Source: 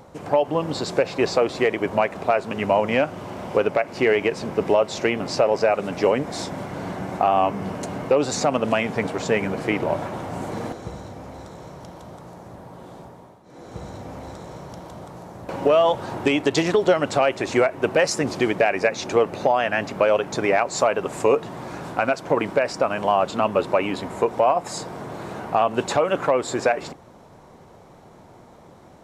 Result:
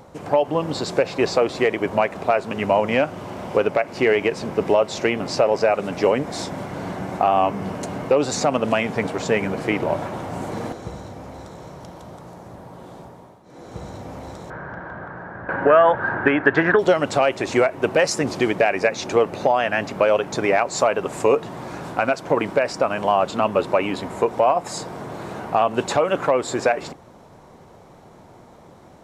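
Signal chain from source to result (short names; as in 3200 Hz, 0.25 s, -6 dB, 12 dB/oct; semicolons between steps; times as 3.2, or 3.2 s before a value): 14.5–16.79 synth low-pass 1600 Hz, resonance Q 12; gain +1 dB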